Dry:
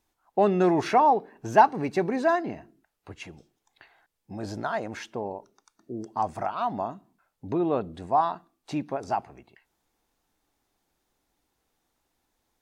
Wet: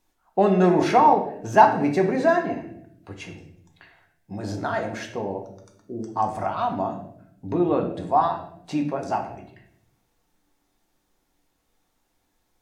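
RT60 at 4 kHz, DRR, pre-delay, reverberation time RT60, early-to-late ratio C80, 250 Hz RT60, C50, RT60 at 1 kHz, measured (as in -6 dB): 0.55 s, 2.0 dB, 4 ms, 0.70 s, 11.5 dB, 1.1 s, 8.0 dB, 0.55 s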